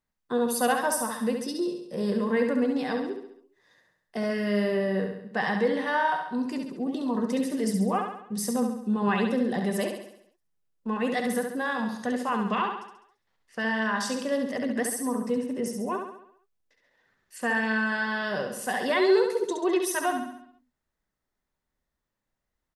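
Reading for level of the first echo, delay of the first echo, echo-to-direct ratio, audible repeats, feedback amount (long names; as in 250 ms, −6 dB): −5.5 dB, 68 ms, −4.0 dB, 6, 52%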